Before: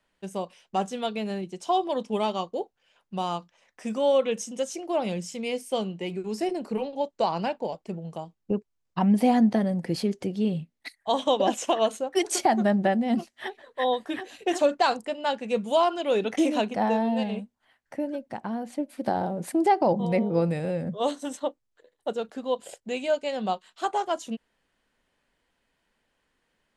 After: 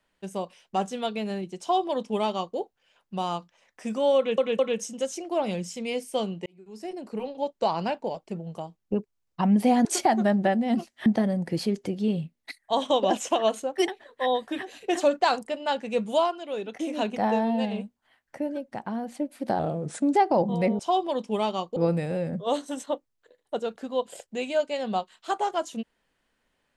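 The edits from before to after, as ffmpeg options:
ffmpeg -i in.wav -filter_complex "[0:a]asplit=13[link_01][link_02][link_03][link_04][link_05][link_06][link_07][link_08][link_09][link_10][link_11][link_12][link_13];[link_01]atrim=end=4.382[link_14];[link_02]atrim=start=4.168:end=4.382[link_15];[link_03]atrim=start=4.168:end=6.04,asetpts=PTS-STARTPTS,afade=type=out:start_time=1.868:duration=0.004:curve=hsin[link_16];[link_04]atrim=start=6.04:end=9.432,asetpts=PTS-STARTPTS,afade=type=in:duration=1.08[link_17];[link_05]atrim=start=12.248:end=13.462[link_18];[link_06]atrim=start=9.428:end=12.252[link_19];[link_07]atrim=start=13.458:end=15.94,asetpts=PTS-STARTPTS,afade=type=out:start_time=2.282:duration=0.2:silence=0.398107[link_20];[link_08]atrim=start=15.94:end=16.47,asetpts=PTS-STARTPTS,volume=-8dB[link_21];[link_09]atrim=start=16.47:end=19.174,asetpts=PTS-STARTPTS,afade=type=in:duration=0.2:silence=0.398107[link_22];[link_10]atrim=start=19.17:end=19.66,asetpts=PTS-STARTPTS,asetrate=38367,aresample=44100[link_23];[link_11]atrim=start=19.656:end=20.302[link_24];[link_12]atrim=start=1.598:end=2.572[link_25];[link_13]atrim=start=20.298[link_26];[link_14][link_15]acrossfade=duration=0.004:curve1=hsin:curve2=hsin[link_27];[link_16][link_17]concat=n=2:v=0:a=1[link_28];[link_27][link_28]acrossfade=duration=0.004:curve1=hsin:curve2=hsin[link_29];[link_29][link_18]acrossfade=duration=0.004:curve1=hsin:curve2=hsin[link_30];[link_30][link_19]acrossfade=duration=0.004:curve1=hsin:curve2=hsin[link_31];[link_20][link_21][link_22]concat=n=3:v=0:a=1[link_32];[link_31][link_32]acrossfade=duration=0.004:curve1=hsin:curve2=hsin[link_33];[link_33][link_23]acrossfade=duration=0.004:curve1=hsin:curve2=hsin[link_34];[link_34][link_24]acrossfade=duration=0.004:curve1=hsin:curve2=hsin[link_35];[link_35][link_25]acrossfade=duration=0.004:curve1=hsin:curve2=hsin[link_36];[link_36][link_26]acrossfade=duration=0.004:curve1=hsin:curve2=hsin" out.wav

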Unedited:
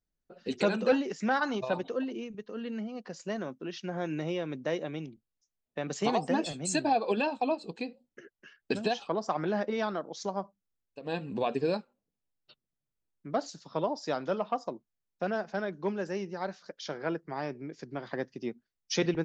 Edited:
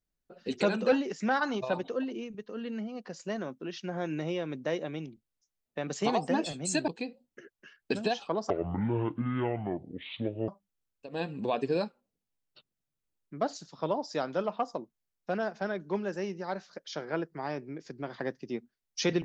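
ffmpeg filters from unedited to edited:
ffmpeg -i in.wav -filter_complex "[0:a]asplit=4[link_01][link_02][link_03][link_04];[link_01]atrim=end=6.882[link_05];[link_02]atrim=start=7.678:end=9.304[link_06];[link_03]atrim=start=9.3:end=10.41,asetpts=PTS-STARTPTS,asetrate=24696,aresample=44100,atrim=end_sample=87412,asetpts=PTS-STARTPTS[link_07];[link_04]atrim=start=10.406[link_08];[link_05][link_06]acrossfade=duration=0.004:curve1=hsin:curve2=hsin[link_09];[link_09][link_07]acrossfade=duration=0.004:curve1=hsin:curve2=hsin[link_10];[link_10][link_08]acrossfade=duration=0.004:curve1=hsin:curve2=hsin" out.wav

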